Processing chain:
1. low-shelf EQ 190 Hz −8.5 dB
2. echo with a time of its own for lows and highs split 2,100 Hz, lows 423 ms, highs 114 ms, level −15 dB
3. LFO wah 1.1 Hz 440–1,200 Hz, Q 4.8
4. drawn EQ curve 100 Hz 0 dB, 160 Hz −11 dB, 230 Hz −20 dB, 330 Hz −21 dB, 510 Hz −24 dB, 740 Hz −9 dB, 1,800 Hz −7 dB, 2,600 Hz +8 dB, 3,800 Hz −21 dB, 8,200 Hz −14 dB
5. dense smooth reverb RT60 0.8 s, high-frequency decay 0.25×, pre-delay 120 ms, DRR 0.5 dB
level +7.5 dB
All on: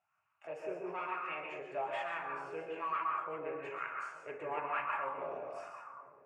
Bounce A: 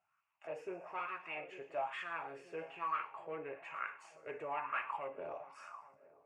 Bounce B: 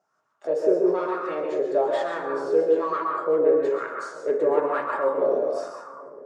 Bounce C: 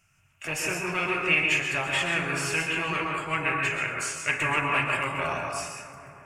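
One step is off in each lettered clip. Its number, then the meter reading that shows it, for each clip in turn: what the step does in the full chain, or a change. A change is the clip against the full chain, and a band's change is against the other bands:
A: 5, change in momentary loudness spread +3 LU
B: 4, 2 kHz band −15.5 dB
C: 3, 1 kHz band −11.5 dB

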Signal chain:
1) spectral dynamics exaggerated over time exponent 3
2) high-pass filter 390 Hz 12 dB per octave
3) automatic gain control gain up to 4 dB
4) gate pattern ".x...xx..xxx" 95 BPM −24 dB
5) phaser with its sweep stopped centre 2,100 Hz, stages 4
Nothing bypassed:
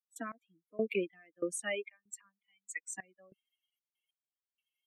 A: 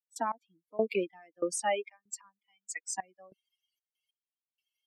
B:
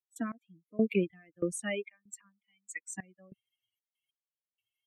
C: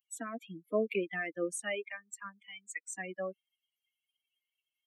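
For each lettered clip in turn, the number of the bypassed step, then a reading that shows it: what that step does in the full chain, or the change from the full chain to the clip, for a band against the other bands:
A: 5, 1 kHz band +12.0 dB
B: 2, change in momentary loudness spread +4 LU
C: 4, 1 kHz band +2.5 dB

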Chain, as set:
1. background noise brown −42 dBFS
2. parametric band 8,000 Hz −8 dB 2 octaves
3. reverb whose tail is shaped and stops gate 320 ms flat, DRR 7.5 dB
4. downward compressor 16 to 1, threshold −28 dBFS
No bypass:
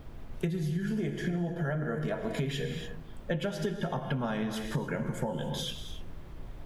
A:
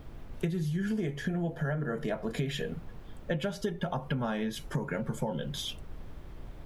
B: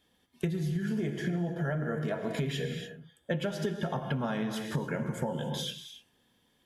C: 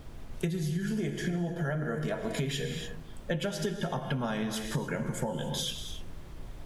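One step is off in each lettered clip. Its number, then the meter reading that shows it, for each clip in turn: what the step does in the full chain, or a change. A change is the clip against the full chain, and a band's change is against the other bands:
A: 3, change in momentary loudness spread +4 LU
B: 1, change in momentary loudness spread −7 LU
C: 2, 8 kHz band +7.0 dB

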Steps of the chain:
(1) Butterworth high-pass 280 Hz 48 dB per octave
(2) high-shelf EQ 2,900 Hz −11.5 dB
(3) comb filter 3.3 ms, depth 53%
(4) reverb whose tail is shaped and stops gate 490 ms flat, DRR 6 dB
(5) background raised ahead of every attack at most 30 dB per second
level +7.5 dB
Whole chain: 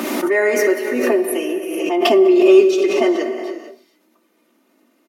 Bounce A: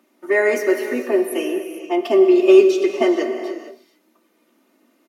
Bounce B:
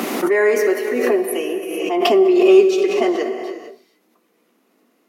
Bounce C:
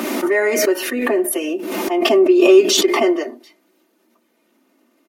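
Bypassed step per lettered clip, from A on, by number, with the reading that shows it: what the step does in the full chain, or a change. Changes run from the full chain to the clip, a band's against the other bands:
5, 4 kHz band −4.0 dB
3, 1 kHz band +1.5 dB
4, 8 kHz band +8.0 dB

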